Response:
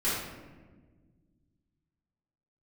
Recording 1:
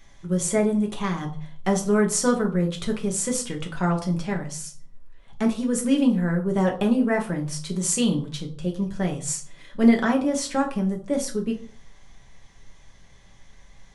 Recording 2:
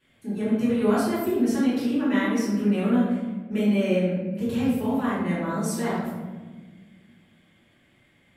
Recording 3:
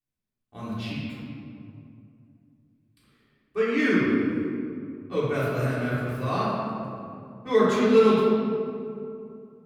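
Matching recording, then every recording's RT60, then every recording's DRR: 2; 0.50, 1.4, 2.6 seconds; 0.5, −12.0, −11.0 decibels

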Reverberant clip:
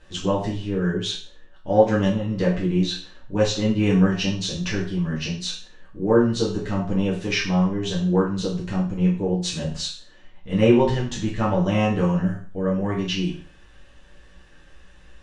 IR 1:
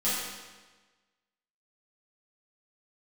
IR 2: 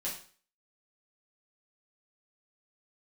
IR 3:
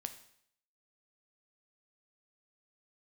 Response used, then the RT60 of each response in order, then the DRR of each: 2; 1.3, 0.45, 0.65 seconds; −11.0, −6.5, 7.5 decibels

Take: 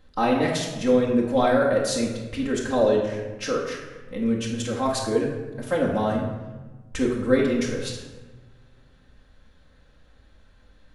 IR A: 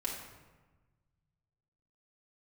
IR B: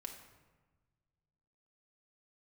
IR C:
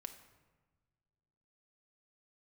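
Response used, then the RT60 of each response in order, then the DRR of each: A; 1.3, 1.3, 1.4 seconds; −4.0, 2.0, 6.0 decibels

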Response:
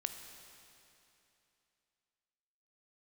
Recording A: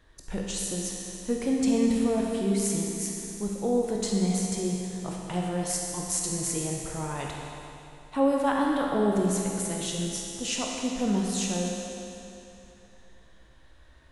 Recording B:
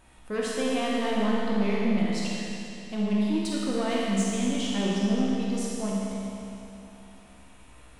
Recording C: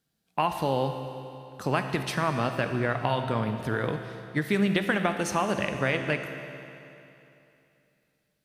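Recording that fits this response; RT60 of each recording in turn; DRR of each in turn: C; 2.9, 2.9, 2.9 seconds; −1.5, −5.5, 6.0 decibels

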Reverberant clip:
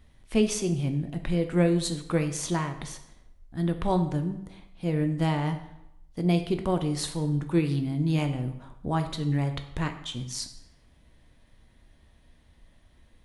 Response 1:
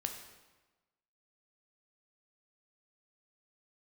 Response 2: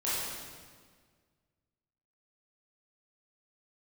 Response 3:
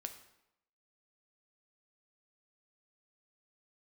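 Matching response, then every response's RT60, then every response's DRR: 3; 1.2, 1.7, 0.85 seconds; 4.0, −10.5, 6.0 decibels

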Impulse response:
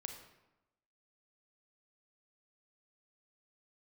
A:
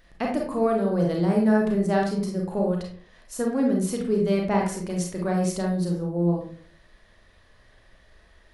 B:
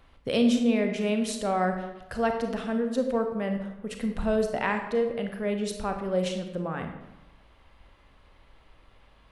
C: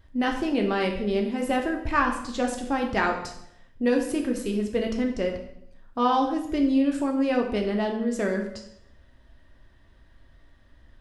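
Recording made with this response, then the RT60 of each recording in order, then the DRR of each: B; 0.50, 0.95, 0.75 seconds; −1.0, 4.5, 1.5 decibels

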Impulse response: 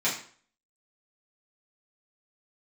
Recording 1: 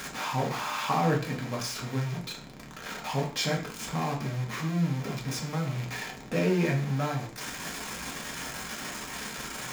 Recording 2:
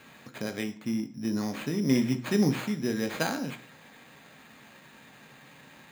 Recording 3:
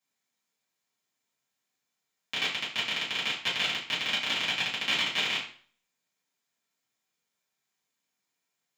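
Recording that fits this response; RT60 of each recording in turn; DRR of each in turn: 3; 0.50, 0.50, 0.50 seconds; −1.5, 7.0, −9.5 decibels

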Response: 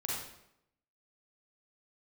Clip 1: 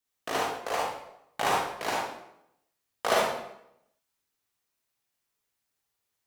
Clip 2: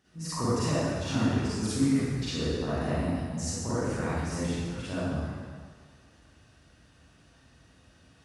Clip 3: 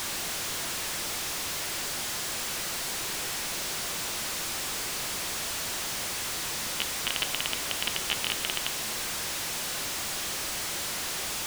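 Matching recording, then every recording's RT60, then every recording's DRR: 1; 0.80, 1.8, 1.2 seconds; −5.0, −12.0, 9.5 decibels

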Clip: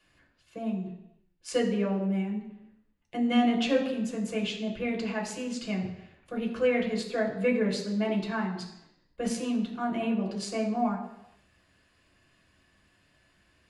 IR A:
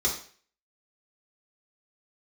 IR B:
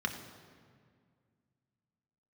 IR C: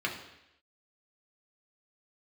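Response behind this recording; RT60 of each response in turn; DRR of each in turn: C; 0.45, 2.0, 0.85 seconds; −5.0, 3.0, −2.0 decibels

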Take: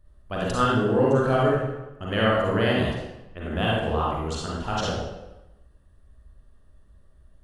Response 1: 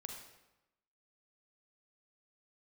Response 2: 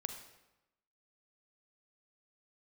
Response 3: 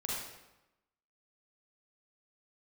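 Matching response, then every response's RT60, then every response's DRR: 3; 1.0, 1.0, 1.0 seconds; 2.0, 6.0, −5.0 decibels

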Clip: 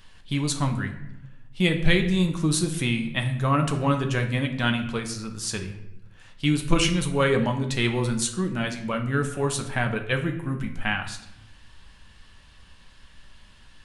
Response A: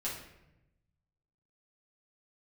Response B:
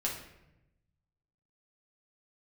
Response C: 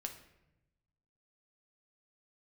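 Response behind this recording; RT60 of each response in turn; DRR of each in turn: C; 0.90, 0.90, 0.90 seconds; −7.5, −3.5, 4.0 decibels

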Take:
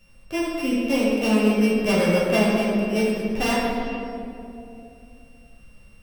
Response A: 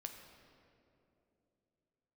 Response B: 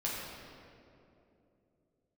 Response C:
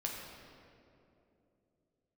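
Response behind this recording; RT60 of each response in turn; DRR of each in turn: B; 2.8, 2.8, 2.8 seconds; 4.0, −6.5, −2.0 decibels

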